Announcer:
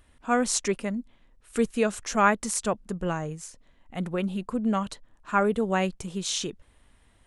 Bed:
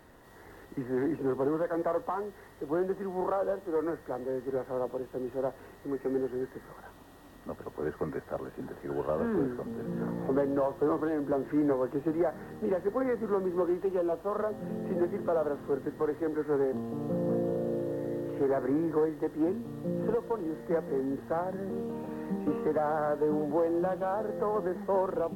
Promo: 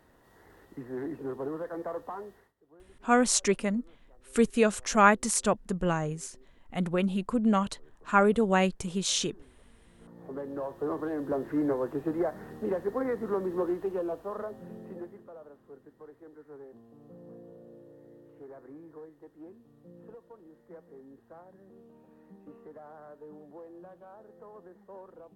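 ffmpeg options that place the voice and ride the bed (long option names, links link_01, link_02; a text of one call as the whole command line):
ffmpeg -i stem1.wav -i stem2.wav -filter_complex "[0:a]adelay=2800,volume=1dB[link_01];[1:a]volume=21dB,afade=type=out:start_time=2.31:duration=0.22:silence=0.0794328,afade=type=in:start_time=9.96:duration=1.38:silence=0.0446684,afade=type=out:start_time=13.67:duration=1.61:silence=0.11885[link_02];[link_01][link_02]amix=inputs=2:normalize=0" out.wav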